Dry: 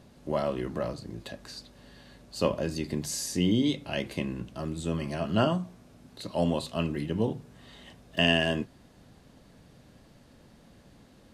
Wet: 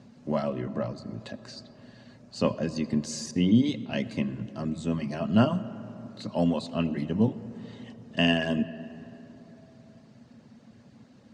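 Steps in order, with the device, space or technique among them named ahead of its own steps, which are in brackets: car door speaker (cabinet simulation 100–7300 Hz, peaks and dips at 120 Hz +8 dB, 230 Hz +10 dB, 340 Hz -3 dB, 3.4 kHz -4 dB); 3.31–4.02 s: expander -32 dBFS; reverb removal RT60 0.57 s; 0.49–0.98 s: treble shelf 3.8 kHz -7.5 dB; algorithmic reverb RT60 3.8 s, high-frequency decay 0.35×, pre-delay 40 ms, DRR 14.5 dB

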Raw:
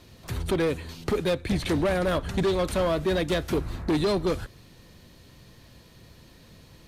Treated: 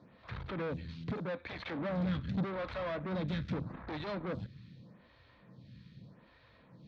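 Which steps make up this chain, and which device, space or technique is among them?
vibe pedal into a guitar amplifier (lamp-driven phase shifter 0.82 Hz; valve stage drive 33 dB, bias 0.55; cabinet simulation 76–3700 Hz, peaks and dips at 130 Hz +7 dB, 190 Hz +7 dB, 380 Hz -8 dB, 740 Hz -3 dB, 2.9 kHz -6 dB); 1.12–1.79 s: bass shelf 110 Hz -11 dB

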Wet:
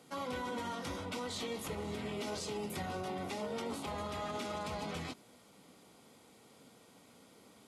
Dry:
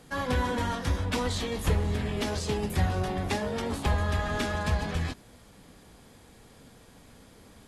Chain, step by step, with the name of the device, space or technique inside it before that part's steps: PA system with an anti-feedback notch (high-pass 190 Hz 12 dB/octave; Butterworth band-stop 1.7 kHz, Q 7; peak limiter -25.5 dBFS, peak gain reduction 9 dB); trim -5 dB

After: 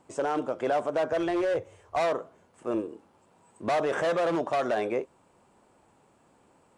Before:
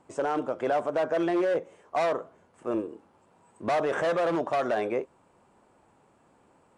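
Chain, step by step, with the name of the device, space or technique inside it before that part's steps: 1.12–2.00 s: resonant low shelf 140 Hz +10.5 dB, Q 3; exciter from parts (in parallel at -6 dB: high-pass 2.2 kHz 12 dB/octave + saturation -39 dBFS, distortion -12 dB)

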